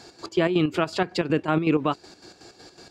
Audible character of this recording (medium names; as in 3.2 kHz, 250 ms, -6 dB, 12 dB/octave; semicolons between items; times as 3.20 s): chopped level 5.4 Hz, depth 60%, duty 55%